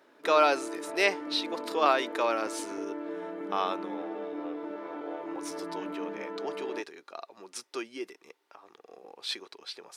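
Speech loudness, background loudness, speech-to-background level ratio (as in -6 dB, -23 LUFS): -30.5 LUFS, -38.5 LUFS, 8.0 dB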